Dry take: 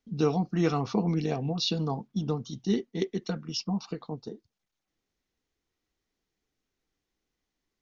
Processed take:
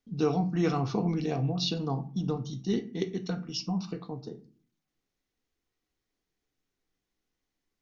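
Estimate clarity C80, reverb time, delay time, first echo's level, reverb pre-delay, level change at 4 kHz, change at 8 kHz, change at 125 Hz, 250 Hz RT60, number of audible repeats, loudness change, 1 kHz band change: 19.5 dB, 0.45 s, no echo, no echo, 3 ms, -1.5 dB, no reading, 0.0 dB, 0.65 s, no echo, -1.0 dB, -0.5 dB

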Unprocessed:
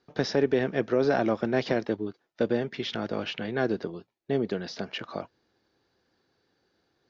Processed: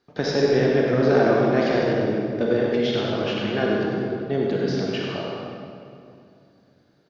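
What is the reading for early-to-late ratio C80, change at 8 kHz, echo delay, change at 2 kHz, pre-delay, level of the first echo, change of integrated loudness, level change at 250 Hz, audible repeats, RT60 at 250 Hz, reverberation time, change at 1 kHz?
-1.0 dB, no reading, 96 ms, +6.0 dB, 29 ms, -6.5 dB, +6.5 dB, +6.5 dB, 1, 3.3 s, 2.5 s, +6.5 dB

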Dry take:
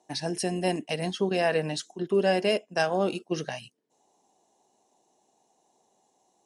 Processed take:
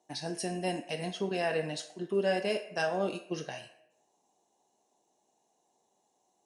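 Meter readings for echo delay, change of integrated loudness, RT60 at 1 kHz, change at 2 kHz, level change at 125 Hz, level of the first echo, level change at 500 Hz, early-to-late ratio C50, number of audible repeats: no echo, -5.5 dB, 0.65 s, -4.5 dB, -6.5 dB, no echo, -5.5 dB, 10.0 dB, no echo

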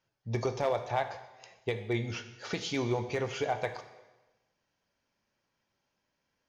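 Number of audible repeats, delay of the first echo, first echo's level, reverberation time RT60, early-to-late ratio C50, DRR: no echo, no echo, no echo, 1.1 s, 11.0 dB, 8.0 dB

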